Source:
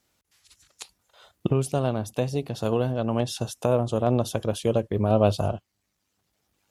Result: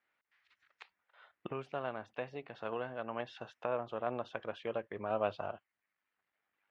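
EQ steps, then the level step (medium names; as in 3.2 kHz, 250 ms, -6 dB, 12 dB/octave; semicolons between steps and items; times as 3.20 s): high-pass 1.4 kHz 6 dB/octave; resonant low-pass 1.9 kHz, resonance Q 2; distance through air 100 m; -4.5 dB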